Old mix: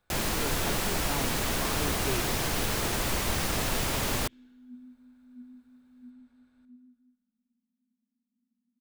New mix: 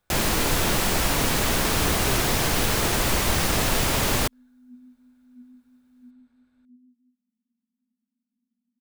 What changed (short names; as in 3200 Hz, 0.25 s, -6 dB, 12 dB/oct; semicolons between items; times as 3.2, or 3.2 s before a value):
first sound +6.5 dB; reverb: off